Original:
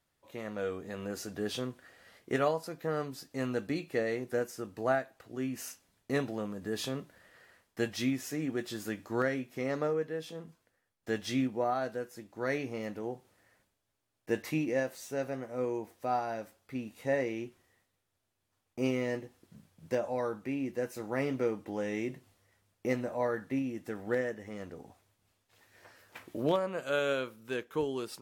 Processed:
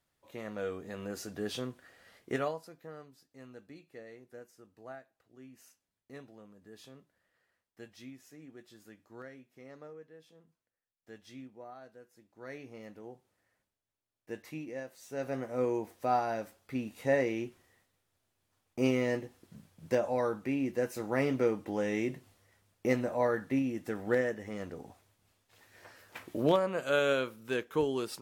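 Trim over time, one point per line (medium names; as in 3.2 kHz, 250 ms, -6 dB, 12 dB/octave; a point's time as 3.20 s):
2.31 s -1.5 dB
2.67 s -10 dB
3.14 s -17.5 dB
11.93 s -17.5 dB
12.77 s -10 dB
14.94 s -10 dB
15.36 s +2.5 dB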